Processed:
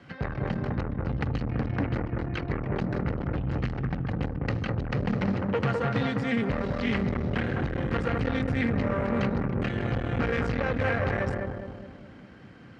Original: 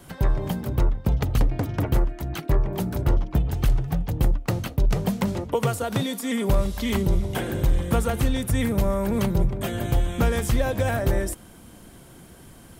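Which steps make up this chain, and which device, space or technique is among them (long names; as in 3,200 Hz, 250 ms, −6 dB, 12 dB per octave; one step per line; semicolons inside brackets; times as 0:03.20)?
analogue delay pedal into a guitar amplifier (bucket-brigade delay 206 ms, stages 2,048, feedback 50%, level −3 dB; tube saturation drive 22 dB, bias 0.75; loudspeaker in its box 110–4,000 Hz, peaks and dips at 170 Hz −5 dB, 370 Hz −8 dB, 650 Hz −7 dB, 960 Hz −7 dB, 1,900 Hz +3 dB, 3,500 Hz −9 dB)
level +5 dB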